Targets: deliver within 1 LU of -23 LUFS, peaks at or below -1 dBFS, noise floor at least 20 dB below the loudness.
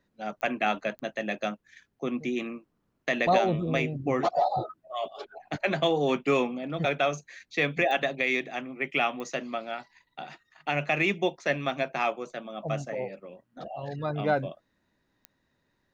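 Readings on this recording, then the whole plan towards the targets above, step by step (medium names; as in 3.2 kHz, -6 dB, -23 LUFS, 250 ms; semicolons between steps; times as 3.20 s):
clicks found 5; loudness -29.0 LUFS; peak level -12.0 dBFS; loudness target -23.0 LUFS
-> de-click; trim +6 dB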